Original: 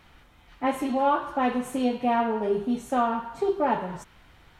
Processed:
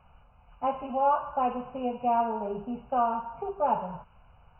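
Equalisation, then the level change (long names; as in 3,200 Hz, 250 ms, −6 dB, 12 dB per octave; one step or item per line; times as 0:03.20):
linear-phase brick-wall low-pass 3,000 Hz
phaser with its sweep stopped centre 790 Hz, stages 4
0.0 dB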